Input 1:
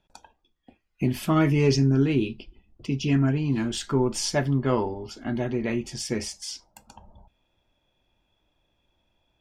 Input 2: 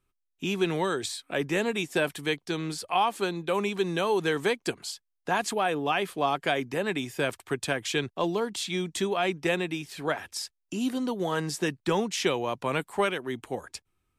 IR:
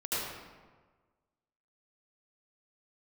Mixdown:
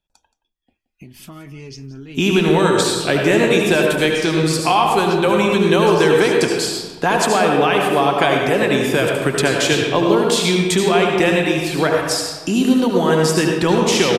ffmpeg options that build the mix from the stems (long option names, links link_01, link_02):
-filter_complex "[0:a]highshelf=frequency=2300:gain=10,acompressor=threshold=-29dB:ratio=12,volume=-14dB,asplit=2[link_01][link_02];[link_02]volume=-16.5dB[link_03];[1:a]acompressor=threshold=-30dB:ratio=2,adelay=1750,volume=0.5dB,asplit=2[link_04][link_05];[link_05]volume=-4.5dB[link_06];[2:a]atrim=start_sample=2205[link_07];[link_06][link_07]afir=irnorm=-1:irlink=0[link_08];[link_03]aecho=0:1:174:1[link_09];[link_01][link_04][link_08][link_09]amix=inputs=4:normalize=0,lowshelf=frequency=94:gain=5.5,dynaudnorm=framelen=360:gausssize=7:maxgain=13.5dB"